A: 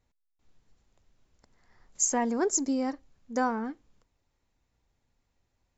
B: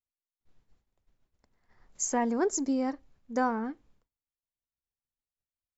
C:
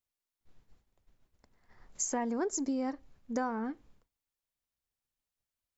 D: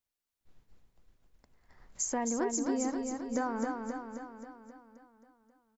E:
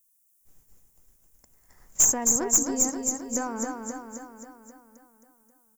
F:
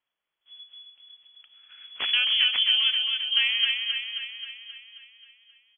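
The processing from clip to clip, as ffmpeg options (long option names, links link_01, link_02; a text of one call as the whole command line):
ffmpeg -i in.wav -af "agate=range=-33dB:threshold=-57dB:ratio=3:detection=peak,highshelf=frequency=5500:gain=-9" out.wav
ffmpeg -i in.wav -af "acompressor=threshold=-36dB:ratio=3,volume=3.5dB" out.wav
ffmpeg -i in.wav -af "aecho=1:1:266|532|798|1064|1330|1596|1862|2128:0.596|0.345|0.2|0.116|0.0674|0.0391|0.0227|0.0132" out.wav
ffmpeg -i in.wav -af "aexciter=amount=14:drive=1.4:freq=6100,aeval=exprs='0.631*(cos(1*acos(clip(val(0)/0.631,-1,1)))-cos(1*PI/2))+0.126*(cos(5*acos(clip(val(0)/0.631,-1,1)))-cos(5*PI/2))+0.0891*(cos(6*acos(clip(val(0)/0.631,-1,1)))-cos(6*PI/2))+0.112*(cos(8*acos(clip(val(0)/0.631,-1,1)))-cos(8*PI/2))':channel_layout=same,volume=-4.5dB" out.wav
ffmpeg -i in.wav -af "lowpass=frequency=2900:width_type=q:width=0.5098,lowpass=frequency=2900:width_type=q:width=0.6013,lowpass=frequency=2900:width_type=q:width=0.9,lowpass=frequency=2900:width_type=q:width=2.563,afreqshift=-3400,volume=7.5dB" out.wav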